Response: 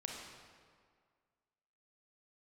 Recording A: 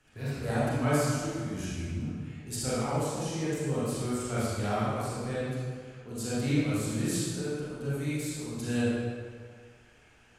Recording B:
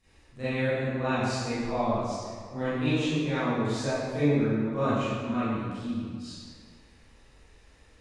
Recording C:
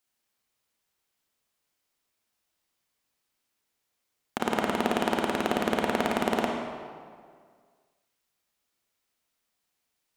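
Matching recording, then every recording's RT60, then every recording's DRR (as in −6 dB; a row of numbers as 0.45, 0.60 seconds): C; 1.9, 1.9, 1.9 seconds; −10.0, −16.0, −0.5 decibels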